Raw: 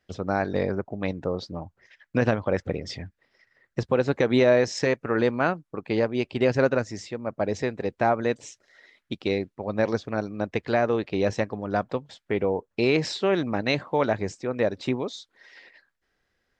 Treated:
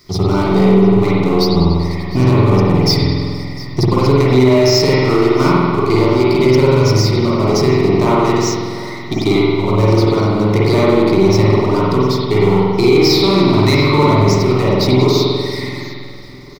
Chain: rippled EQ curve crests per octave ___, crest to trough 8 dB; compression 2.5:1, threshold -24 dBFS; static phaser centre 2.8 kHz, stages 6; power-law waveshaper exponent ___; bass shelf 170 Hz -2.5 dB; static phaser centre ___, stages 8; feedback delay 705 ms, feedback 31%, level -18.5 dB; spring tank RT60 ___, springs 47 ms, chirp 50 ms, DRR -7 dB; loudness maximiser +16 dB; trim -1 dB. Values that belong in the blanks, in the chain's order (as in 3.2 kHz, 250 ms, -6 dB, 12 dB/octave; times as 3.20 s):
0.87, 0.7, 330 Hz, 1.8 s